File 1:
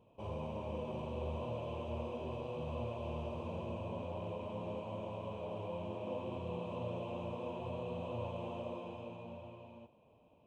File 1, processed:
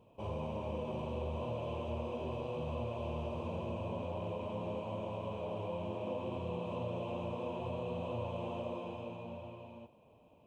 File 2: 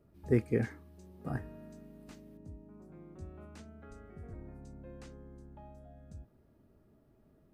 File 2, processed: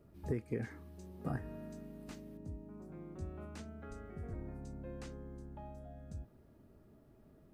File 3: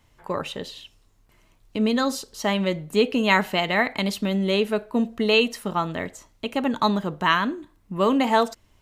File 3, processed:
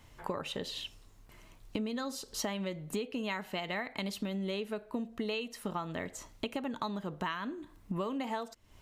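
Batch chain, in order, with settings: compression 12:1, threshold -36 dBFS; trim +3 dB

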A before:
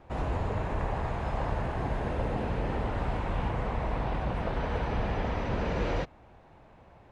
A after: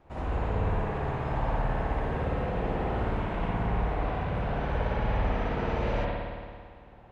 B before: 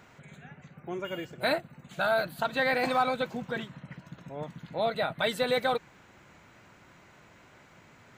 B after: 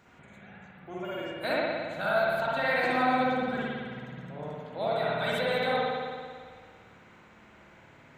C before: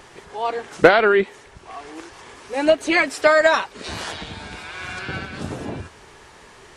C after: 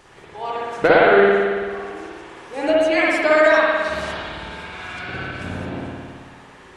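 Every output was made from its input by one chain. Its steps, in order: spring tank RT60 1.9 s, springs 55 ms, chirp 55 ms, DRR -6.5 dB; trim -6 dB

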